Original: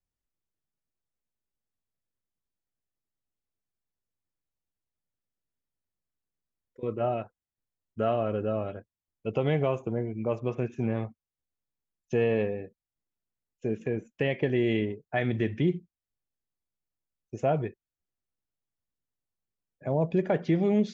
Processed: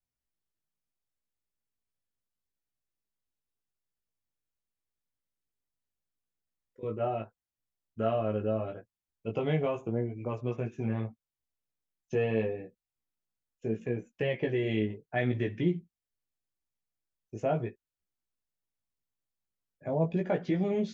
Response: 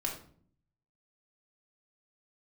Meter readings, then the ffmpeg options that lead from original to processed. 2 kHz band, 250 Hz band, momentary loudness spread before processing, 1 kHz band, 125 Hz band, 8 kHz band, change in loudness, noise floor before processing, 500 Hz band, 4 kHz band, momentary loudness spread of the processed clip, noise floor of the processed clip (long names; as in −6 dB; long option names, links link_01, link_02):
−3.0 dB, −3.5 dB, 13 LU, −3.0 dB, −2.5 dB, can't be measured, −3.0 dB, below −85 dBFS, −3.0 dB, −3.0 dB, 11 LU, below −85 dBFS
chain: -af "flanger=delay=16:depth=2.8:speed=0.78"